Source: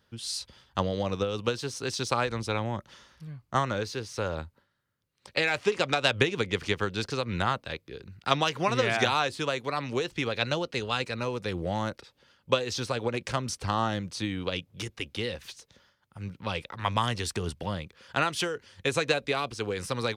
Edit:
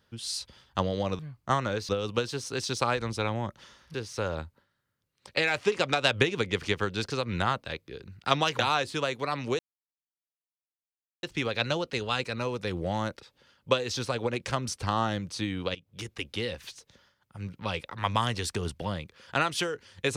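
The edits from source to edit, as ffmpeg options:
-filter_complex "[0:a]asplit=7[s0][s1][s2][s3][s4][s5][s6];[s0]atrim=end=1.192[s7];[s1]atrim=start=3.238:end=3.942[s8];[s2]atrim=start=1.188:end=3.242[s9];[s3]atrim=start=3.938:end=8.592[s10];[s4]atrim=start=9.038:end=10.04,asetpts=PTS-STARTPTS,afade=t=out:st=0.998:d=0.004:c=hsin,apad=pad_dur=1.64[s11];[s5]atrim=start=10.04:end=14.56,asetpts=PTS-STARTPTS,afade=t=in:d=0.004:c=hsin,afade=t=out:st=4.516:d=0.004:c=hsin:silence=0.1[s12];[s6]atrim=start=14.56,asetpts=PTS-STARTPTS,afade=t=in:d=0.54:c=qsin:silence=0.1[s13];[s7][s8]acrossfade=d=0.004:c1=hsin:c2=hsin[s14];[s14][s9]acrossfade=d=0.004:c1=hsin:c2=hsin[s15];[s15][s10]acrossfade=d=0.004:c1=hsin:c2=hsin[s16];[s11][s12][s13]concat=n=3:v=0:a=1[s17];[s16][s17]acrossfade=d=0.004:c1=hsin:c2=hsin"

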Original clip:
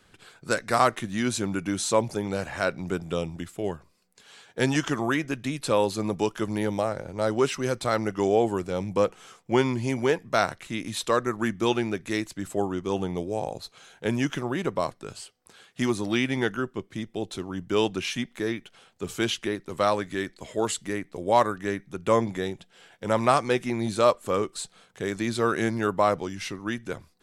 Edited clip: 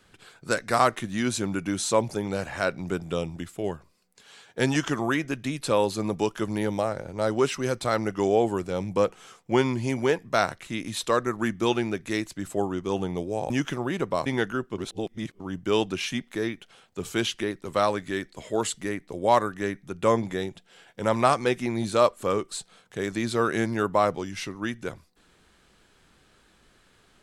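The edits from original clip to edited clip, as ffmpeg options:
-filter_complex "[0:a]asplit=5[s0][s1][s2][s3][s4];[s0]atrim=end=13.502[s5];[s1]atrim=start=14.148:end=14.912[s6];[s2]atrim=start=16.298:end=16.822[s7];[s3]atrim=start=16.818:end=17.442,asetpts=PTS-STARTPTS,areverse[s8];[s4]atrim=start=17.438[s9];[s5][s6]acrossfade=d=0.004:c1=hsin:c2=hsin[s10];[s10][s7]acrossfade=d=0.004:c1=hsin:c2=hsin[s11];[s11][s8]acrossfade=d=0.004:c1=hsin:c2=hsin[s12];[s12][s9]acrossfade=d=0.004:c1=hsin:c2=hsin"

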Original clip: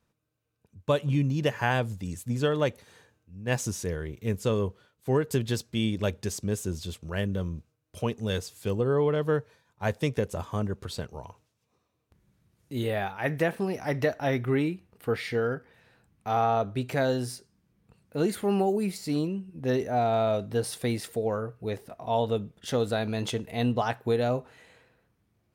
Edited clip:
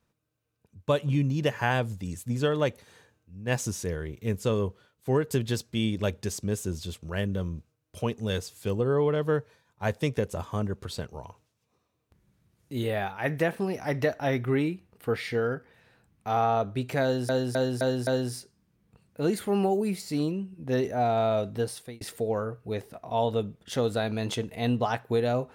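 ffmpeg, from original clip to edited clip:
-filter_complex "[0:a]asplit=6[s0][s1][s2][s3][s4][s5];[s0]atrim=end=17.292[s6];[s1]atrim=start=17.028:end=17.292[s7];[s2]atrim=start=17.028:end=17.292[s8];[s3]atrim=start=17.028:end=17.292[s9];[s4]atrim=start=17.028:end=20.97,asetpts=PTS-STARTPTS,afade=t=out:st=3.492:d=0.45[s10];[s5]atrim=start=20.97,asetpts=PTS-STARTPTS,afade=t=in:d=0.004:c=hsin[s11];[s6][s7]acrossfade=d=0.004:c1=hsin:c2=hsin[s12];[s12][s8]acrossfade=d=0.004:c1=hsin:c2=hsin[s13];[s13][s9]acrossfade=d=0.004:c1=hsin:c2=hsin[s14];[s10][s11]concat=n=2:v=0:a=1[s15];[s14][s15]acrossfade=d=0.004:c1=hsin:c2=hsin"

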